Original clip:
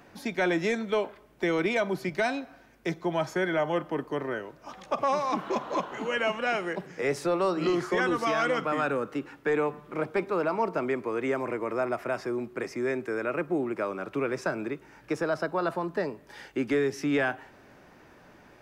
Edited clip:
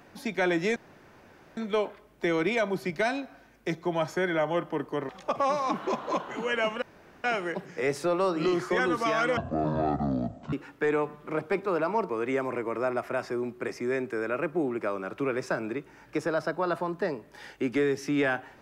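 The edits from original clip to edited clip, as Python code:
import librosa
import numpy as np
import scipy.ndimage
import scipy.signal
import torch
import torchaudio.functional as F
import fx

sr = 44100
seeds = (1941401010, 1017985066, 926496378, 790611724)

y = fx.edit(x, sr, fx.insert_room_tone(at_s=0.76, length_s=0.81),
    fx.cut(start_s=4.28, length_s=0.44),
    fx.insert_room_tone(at_s=6.45, length_s=0.42),
    fx.speed_span(start_s=8.58, length_s=0.59, speed=0.51),
    fx.cut(start_s=10.74, length_s=0.31), tone=tone)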